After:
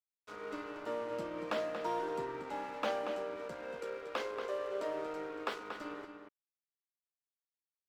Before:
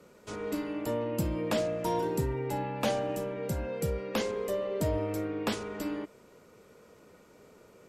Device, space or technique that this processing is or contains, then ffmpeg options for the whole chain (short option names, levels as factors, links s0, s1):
pocket radio on a weak battery: -filter_complex "[0:a]asettb=1/sr,asplit=3[s0][s1][s2];[s0]atrim=end=3.794[s3];[s1]atrim=start=3.79:end=5.6,asetpts=PTS-STARTPTS,afade=t=in:d=0.004:c=qsin,afade=t=out:st=1.806:d=0.004:c=qsin,highpass=f=280:w=0.5412,highpass=f=280:w=1.3066[s4];[s2]atrim=start=5.596[s5];[s3][s4]acrossfade=d=0.004:c1=hsin:c2=qsin[s6];[s6][s5]acrossfade=d=0.004:c1=qsin:c2=hsin,highpass=340,lowpass=3900,aeval=exprs='sgn(val(0))*max(abs(val(0))-0.00473,0)':c=same,equalizer=f=1300:t=o:w=0.58:g=7,asplit=2[s7][s8];[s8]adelay=233.2,volume=0.447,highshelf=f=4000:g=-5.25[s9];[s7][s9]amix=inputs=2:normalize=0,volume=0.596"